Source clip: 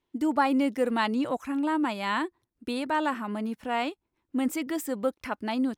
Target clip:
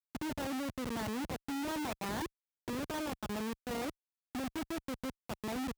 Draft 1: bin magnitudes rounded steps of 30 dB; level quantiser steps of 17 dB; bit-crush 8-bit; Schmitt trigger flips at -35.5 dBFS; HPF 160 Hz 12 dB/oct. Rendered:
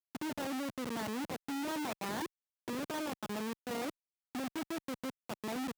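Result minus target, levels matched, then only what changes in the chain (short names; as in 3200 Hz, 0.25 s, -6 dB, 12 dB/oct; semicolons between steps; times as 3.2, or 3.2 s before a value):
125 Hz band -4.0 dB
change: HPF 55 Hz 12 dB/oct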